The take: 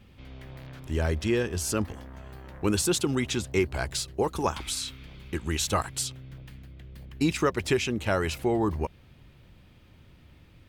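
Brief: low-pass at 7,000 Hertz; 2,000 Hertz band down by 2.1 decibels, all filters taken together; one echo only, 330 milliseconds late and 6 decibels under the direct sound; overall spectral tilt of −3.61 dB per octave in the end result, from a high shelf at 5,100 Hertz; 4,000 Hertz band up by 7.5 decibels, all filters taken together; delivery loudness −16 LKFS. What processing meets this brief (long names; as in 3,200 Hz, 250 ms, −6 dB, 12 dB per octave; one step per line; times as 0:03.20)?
low-pass filter 7,000 Hz
parametric band 2,000 Hz −6.5 dB
parametric band 4,000 Hz +8.5 dB
high-shelf EQ 5,100 Hz +6 dB
single-tap delay 330 ms −6 dB
level +10 dB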